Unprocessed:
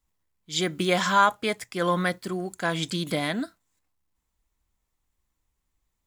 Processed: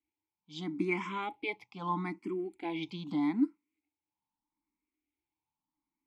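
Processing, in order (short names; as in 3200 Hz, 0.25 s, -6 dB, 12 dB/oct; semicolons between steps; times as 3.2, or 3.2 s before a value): vowel filter u; notch 7000 Hz, Q 16; endless phaser +0.79 Hz; gain +8.5 dB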